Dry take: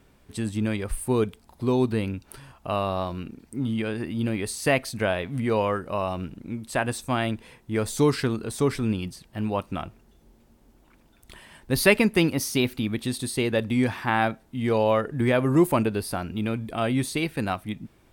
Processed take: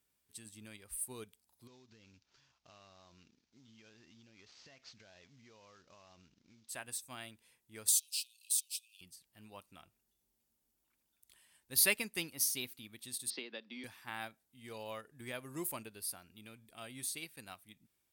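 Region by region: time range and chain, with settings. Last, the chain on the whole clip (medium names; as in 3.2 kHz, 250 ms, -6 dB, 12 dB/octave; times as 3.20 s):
1.67–6.69 s: CVSD coder 32 kbps + compression 16:1, threshold -28 dBFS
7.88–9.01 s: waveshaping leveller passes 2 + compression 12:1, threshold -21 dBFS + Chebyshev high-pass 2.5 kHz, order 8
13.30–13.84 s: Chebyshev band-pass 190–5300 Hz, order 5 + three bands compressed up and down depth 100%
whole clip: high-pass 42 Hz; pre-emphasis filter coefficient 0.9; upward expansion 1.5:1, over -47 dBFS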